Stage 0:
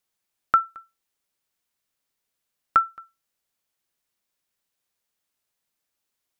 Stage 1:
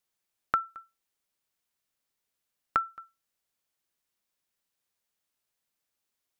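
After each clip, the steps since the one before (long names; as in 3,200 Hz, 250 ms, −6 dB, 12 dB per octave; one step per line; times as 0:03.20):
downward compressor, threshold −20 dBFS, peak gain reduction 7 dB
level −3 dB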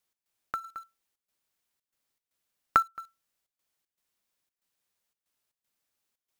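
gate pattern "x.xx.xxxx.xxx" 117 BPM −12 dB
in parallel at −7.5 dB: log-companded quantiser 4 bits
on the sum: level +1.5 dB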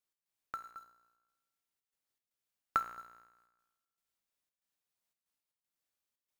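tuned comb filter 59 Hz, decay 1.2 s, harmonics all, mix 70%
amplitude modulation by smooth noise, depth 55%
level +3 dB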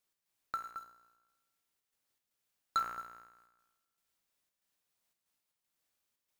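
soft clipping −31 dBFS, distortion −6 dB
level +5.5 dB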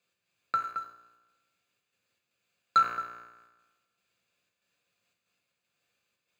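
convolution reverb RT60 0.50 s, pre-delay 3 ms, DRR 6.5 dB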